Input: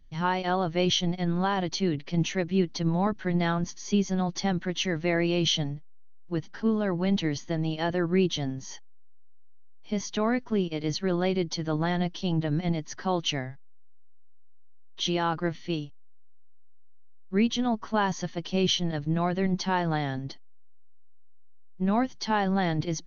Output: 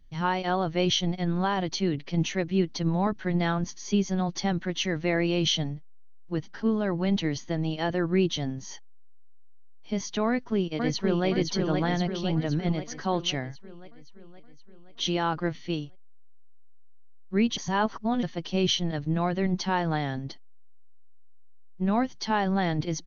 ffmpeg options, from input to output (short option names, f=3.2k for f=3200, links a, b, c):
-filter_complex "[0:a]asplit=2[a][b];[b]afade=t=in:st=10.27:d=0.01,afade=t=out:st=11.27:d=0.01,aecho=0:1:520|1040|1560|2080|2600|3120|3640|4160|4680:0.668344|0.401006|0.240604|0.144362|0.0866174|0.0519704|0.0311823|0.0187094|0.0112256[c];[a][c]amix=inputs=2:normalize=0,asplit=3[d][e][f];[d]atrim=end=17.572[g];[e]atrim=start=17.568:end=18.232,asetpts=PTS-STARTPTS,areverse[h];[f]atrim=start=18.228[i];[g][h]acrossfade=d=0.004:c1=hsin:c2=hsin[j];[j][i]acrossfade=d=0.004:c1=hsin:c2=hsin"